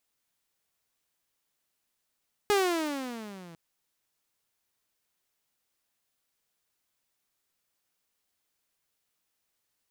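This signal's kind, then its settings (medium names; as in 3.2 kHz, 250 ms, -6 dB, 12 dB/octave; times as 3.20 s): gliding synth tone saw, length 1.05 s, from 420 Hz, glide -16.5 st, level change -25.5 dB, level -18 dB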